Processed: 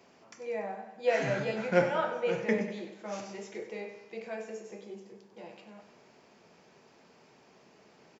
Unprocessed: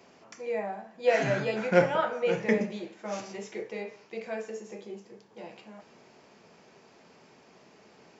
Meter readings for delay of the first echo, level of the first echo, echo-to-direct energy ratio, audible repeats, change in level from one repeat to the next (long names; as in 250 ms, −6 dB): 96 ms, −11.0 dB, −9.5 dB, 4, −5.5 dB